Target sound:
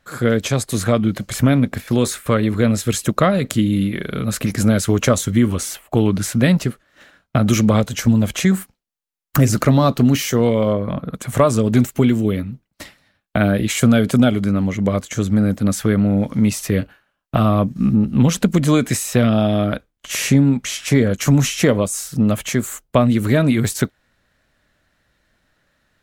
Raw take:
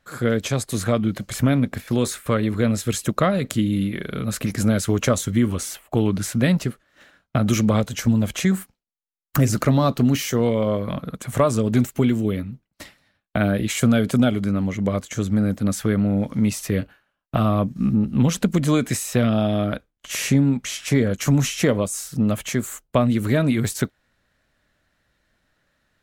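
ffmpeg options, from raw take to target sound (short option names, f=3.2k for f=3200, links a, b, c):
-filter_complex "[0:a]asettb=1/sr,asplit=3[a][b][c];[a]atrim=end=10.734[d];[b]atrim=start=10.73:end=11.13,asetpts=PTS-STARTPTS,afade=t=in:d=0.004:c=qsin,afade=t=out:st=0.396:d=0.004:c=qsin,highshelf=f=2.6k:g=-11.5[e];[c]atrim=start=11.126[f];[d][e]acrossfade=d=0.004:c1=hsin:c2=qsin[g];[g][f]acrossfade=d=0.004:c1=qsin:c2=hsin,volume=4dB"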